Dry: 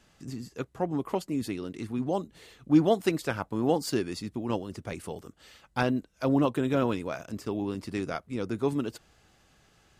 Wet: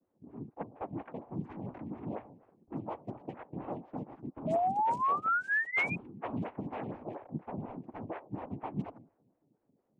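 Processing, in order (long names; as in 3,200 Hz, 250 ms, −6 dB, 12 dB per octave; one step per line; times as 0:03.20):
adaptive Wiener filter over 9 samples
hum removal 127.8 Hz, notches 8
single-sideband voice off tune −95 Hz 160–3,500 Hz
0:01.55–0:02.14: transient designer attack −7 dB, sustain +9 dB
downward compressor 8 to 1, threshold −34 dBFS, peak gain reduction 18 dB
cochlear-implant simulation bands 4
0:04.47–0:05.96: sound drawn into the spectrogram rise 620–2,500 Hz −29 dBFS
low-pass that shuts in the quiet parts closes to 350 Hz, open at −26.5 dBFS
phaser with staggered stages 4.2 Hz
level +1.5 dB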